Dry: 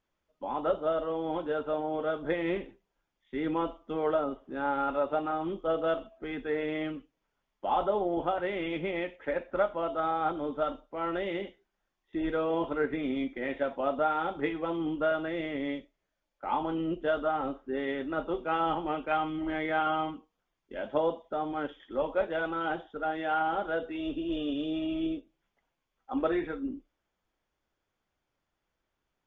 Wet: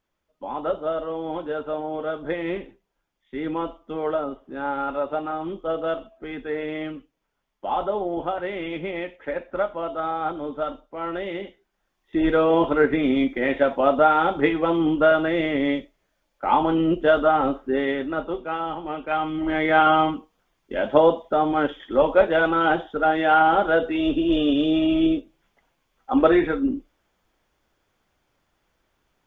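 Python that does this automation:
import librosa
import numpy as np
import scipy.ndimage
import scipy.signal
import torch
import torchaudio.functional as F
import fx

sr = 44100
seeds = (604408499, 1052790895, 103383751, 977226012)

y = fx.gain(x, sr, db=fx.line((11.43, 3.0), (12.25, 11.0), (17.66, 11.0), (18.72, -0.5), (19.8, 12.0)))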